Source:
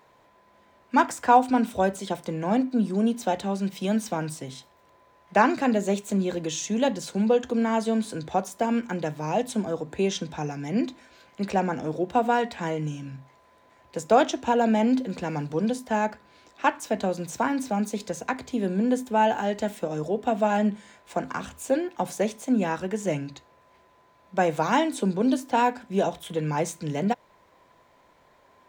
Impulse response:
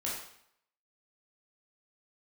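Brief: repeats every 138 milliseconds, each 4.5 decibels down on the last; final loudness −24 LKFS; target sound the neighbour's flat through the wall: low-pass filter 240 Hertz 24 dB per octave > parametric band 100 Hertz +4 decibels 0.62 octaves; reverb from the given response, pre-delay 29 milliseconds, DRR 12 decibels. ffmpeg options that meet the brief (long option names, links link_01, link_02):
-filter_complex "[0:a]aecho=1:1:138|276|414|552|690|828|966|1104|1242:0.596|0.357|0.214|0.129|0.0772|0.0463|0.0278|0.0167|0.01,asplit=2[link_01][link_02];[1:a]atrim=start_sample=2205,adelay=29[link_03];[link_02][link_03]afir=irnorm=-1:irlink=0,volume=-15.5dB[link_04];[link_01][link_04]amix=inputs=2:normalize=0,lowpass=frequency=240:width=0.5412,lowpass=frequency=240:width=1.3066,equalizer=frequency=100:width_type=o:width=0.62:gain=4,volume=6.5dB"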